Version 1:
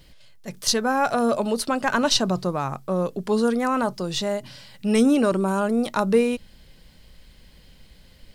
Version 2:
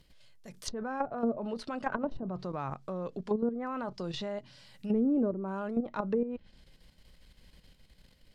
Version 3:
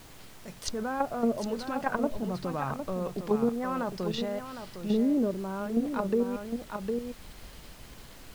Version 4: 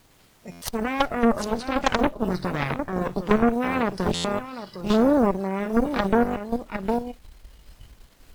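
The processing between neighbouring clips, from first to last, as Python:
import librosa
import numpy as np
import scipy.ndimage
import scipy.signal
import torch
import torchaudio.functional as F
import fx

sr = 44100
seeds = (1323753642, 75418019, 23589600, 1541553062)

y1 = fx.level_steps(x, sr, step_db=10)
y1 = fx.env_lowpass_down(y1, sr, base_hz=490.0, full_db=-19.5)
y1 = F.gain(torch.from_numpy(y1), -5.5).numpy()
y2 = y1 + 10.0 ** (-8.0 / 20.0) * np.pad(y1, (int(757 * sr / 1000.0), 0))[:len(y1)]
y2 = fx.rider(y2, sr, range_db=10, speed_s=2.0)
y2 = fx.dmg_noise_colour(y2, sr, seeds[0], colour='pink', level_db=-53.0)
y2 = F.gain(torch.from_numpy(y2), 2.0).numpy()
y3 = fx.cheby_harmonics(y2, sr, harmonics=(3, 4, 5, 6), levels_db=(-15, -21, -31, -11), full_scale_db=-13.5)
y3 = fx.noise_reduce_blind(y3, sr, reduce_db=11)
y3 = fx.buffer_glitch(y3, sr, at_s=(0.51, 4.14), block=512, repeats=8)
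y3 = F.gain(torch.from_numpy(y3), 8.0).numpy()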